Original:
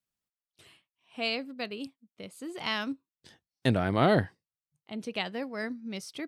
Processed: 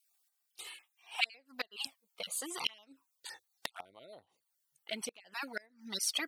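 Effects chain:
time-frequency cells dropped at random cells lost 22%
parametric band 770 Hz +15 dB 2.4 octaves
in parallel at +2 dB: downward compressor 6 to 1, threshold −31 dBFS, peak gain reduction 20 dB
on the sum: flanger swept by the level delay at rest 2.6 ms, full sweep at −16.5 dBFS
gate with flip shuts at −16 dBFS, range −28 dB
first-order pre-emphasis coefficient 0.97
level +9.5 dB

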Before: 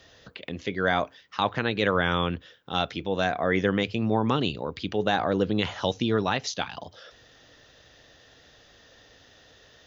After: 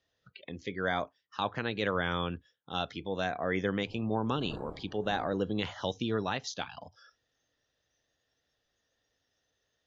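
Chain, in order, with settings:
0:03.84–0:05.64: wind on the microphone 480 Hz −33 dBFS
noise reduction from a noise print of the clip's start 18 dB
level −7 dB

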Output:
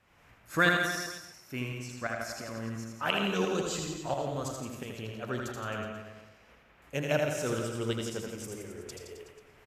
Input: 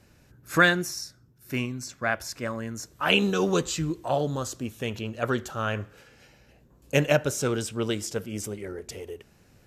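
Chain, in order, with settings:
noise in a band 400–2,600 Hz −57 dBFS
shaped tremolo saw up 2.9 Hz, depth 70%
reverse bouncing-ball delay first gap 80 ms, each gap 1.1×, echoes 5
on a send at −9 dB: convolution reverb RT60 0.40 s, pre-delay 70 ms
on the sum: level −5 dB

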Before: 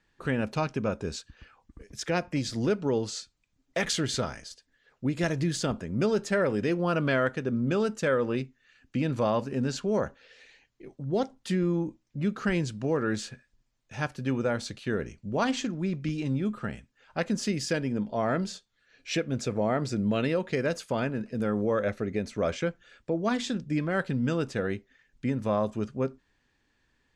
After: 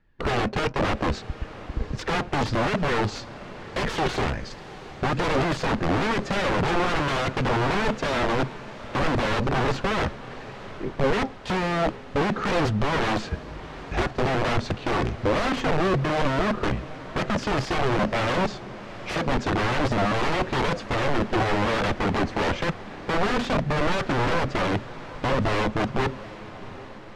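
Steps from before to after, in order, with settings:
low-shelf EQ 210 Hz +6.5 dB
in parallel at −0.5 dB: downward compressor 5 to 1, threshold −36 dBFS, peak gain reduction 15 dB
on the sum: leveller curve on the samples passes 2
wrap-around overflow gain 17.5 dB
flanger 1.1 Hz, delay 1.4 ms, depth 1.4 ms, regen +74%
on a send: feedback delay with all-pass diffusion 755 ms, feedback 61%, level −16 dB
0:13.27–0:14.07: on the sum: frequency shifter −55 Hz
head-to-tape spacing loss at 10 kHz 27 dB
level +6 dB

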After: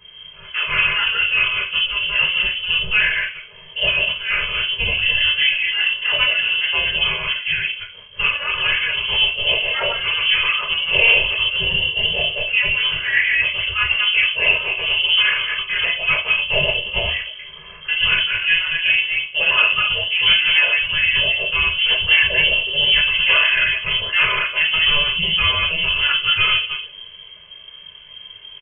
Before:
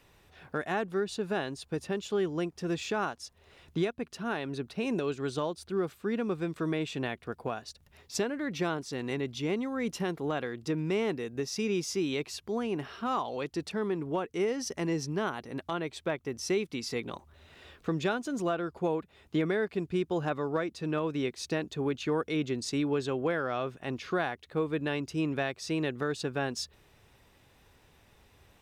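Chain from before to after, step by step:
delay that plays each chunk backwards 135 ms, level −2 dB
comb filter 1.9 ms, depth 100%
log-companded quantiser 6 bits
formants moved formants +3 semitones
rectangular room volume 250 cubic metres, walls furnished, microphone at 3.6 metres
voice inversion scrambler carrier 3,200 Hz
level +2.5 dB

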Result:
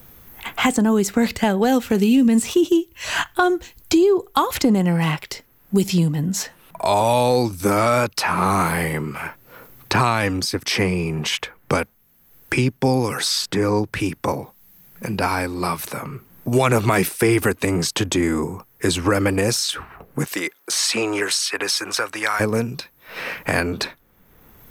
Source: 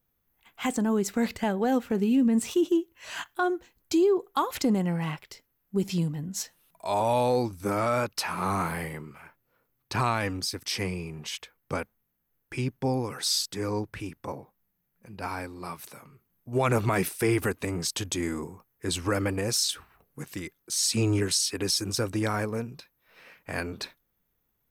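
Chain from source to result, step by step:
0:20.25–0:22.39: high-pass filter 430 Hz → 1,300 Hz 12 dB per octave
multiband upward and downward compressor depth 70%
level +9 dB

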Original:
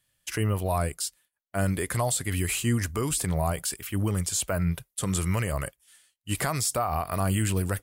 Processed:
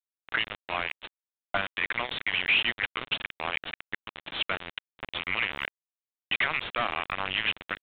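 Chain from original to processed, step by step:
envelope filter 670–2,600 Hz, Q 2.5, up, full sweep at −26 dBFS
hum removal 54.94 Hz, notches 9
log-companded quantiser 2 bits
downsampling to 8,000 Hz
level +6 dB

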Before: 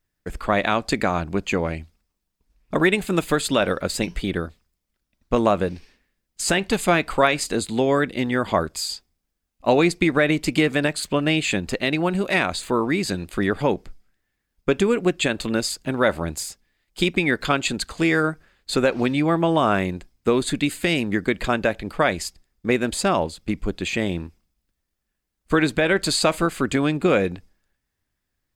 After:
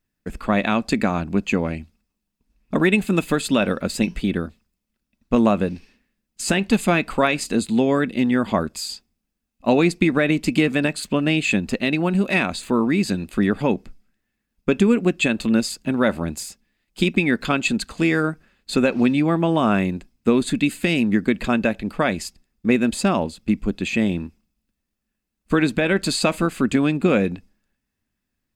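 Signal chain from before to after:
hollow resonant body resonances 220/2,600 Hz, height 10 dB, ringing for 35 ms
level −2 dB

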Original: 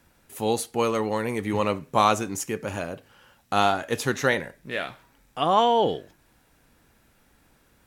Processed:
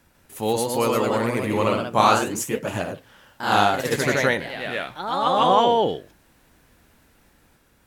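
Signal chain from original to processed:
delay with pitch and tempo change per echo 147 ms, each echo +1 semitone, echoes 3
level +1 dB

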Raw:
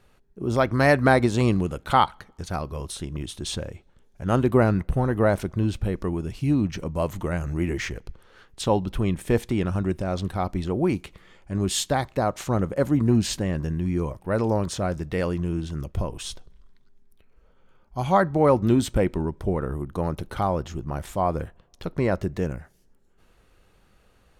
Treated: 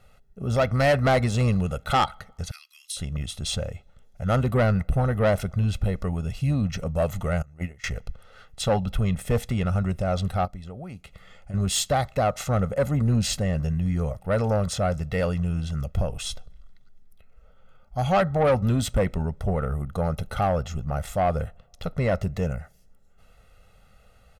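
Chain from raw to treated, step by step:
0:02.51–0:02.97: inverse Chebyshev high-pass filter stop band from 530 Hz, stop band 70 dB
0:07.42–0:07.84: noise gate −22 dBFS, range −24 dB
comb filter 1.5 ms, depth 82%
0:10.45–0:11.54: downward compressor 16 to 1, threshold −34 dBFS, peak gain reduction 15 dB
soft clipping −15 dBFS, distortion −12 dB

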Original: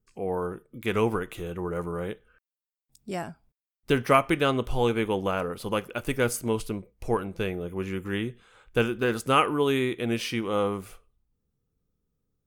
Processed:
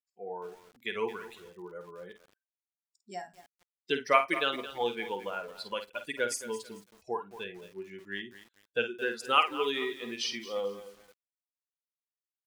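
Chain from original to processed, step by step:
spectral dynamics exaggerated over time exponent 2
high-shelf EQ 2,200 Hz +10 dB
in parallel at +2 dB: downward compressor 8 to 1, threshold −39 dBFS, peak gain reduction 24 dB
on the sum: band-pass filter 390–5,600 Hz
double-tracking delay 50 ms −9 dB
on a send at −18.5 dB: convolution reverb, pre-delay 3 ms
on the sum: feedback echo at a low word length 220 ms, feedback 35%, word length 7 bits, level −13.5 dB
level −4 dB

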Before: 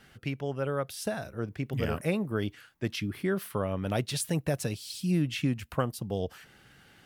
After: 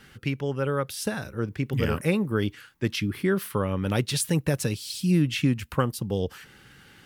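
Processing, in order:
parametric band 670 Hz −11.5 dB 0.28 octaves
level +5.5 dB

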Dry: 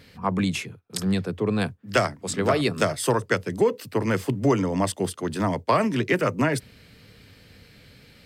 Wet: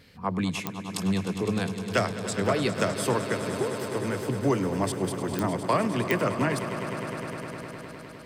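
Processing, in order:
0:03.29–0:04.30: downward compressor, threshold −23 dBFS, peak gain reduction 8 dB
echo that builds up and dies away 102 ms, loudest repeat 5, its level −13.5 dB
digital clicks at 0:00.67/0:05.39/0:06.11, −8 dBFS
level −4 dB

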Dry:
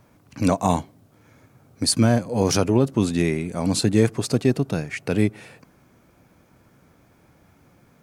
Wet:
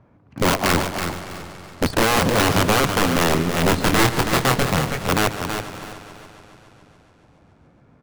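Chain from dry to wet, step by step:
high-pass filter 52 Hz 6 dB per octave
0:01.84–0:02.30: transient designer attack −4 dB, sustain +12 dB
mid-hump overdrive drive 13 dB, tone 1,500 Hz, clips at −5.5 dBFS
RIAA equalisation playback
in parallel at −6 dB: bit reduction 4 bits
on the sum: wrap-around overflow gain 5.5 dB
0:03.69–0:04.70: double-tracking delay 24 ms −5.5 dB
on a send: repeating echo 327 ms, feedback 25%, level −7.5 dB
on the sum: feedback echo with a swinging delay time 141 ms, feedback 76%, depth 71 cents, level −14 dB
level −5.5 dB

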